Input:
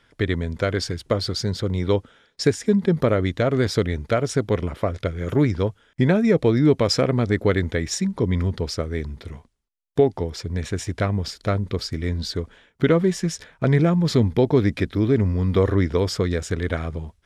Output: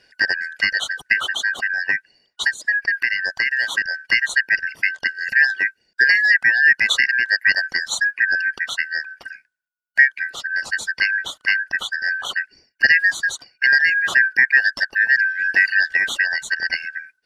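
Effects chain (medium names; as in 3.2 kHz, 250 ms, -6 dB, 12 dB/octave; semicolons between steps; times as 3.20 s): four frequency bands reordered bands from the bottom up 3142; reverb removal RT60 1.2 s; 1.47–3.84 s: compression 4:1, threshold -20 dBFS, peak gain reduction 7.5 dB; trim +3.5 dB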